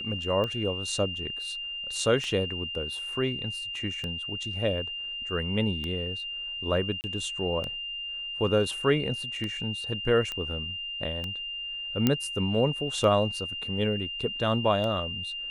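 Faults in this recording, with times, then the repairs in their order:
tick 33 1/3 rpm -20 dBFS
tone 2800 Hz -33 dBFS
7.01–7.04 gap 29 ms
10.32 pop -19 dBFS
12.07 pop -9 dBFS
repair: de-click; notch 2800 Hz, Q 30; interpolate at 7.01, 29 ms

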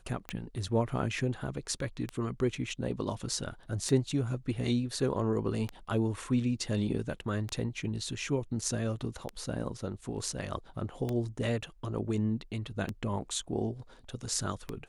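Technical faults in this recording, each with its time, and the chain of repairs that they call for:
tick 33 1/3 rpm -20 dBFS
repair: de-click

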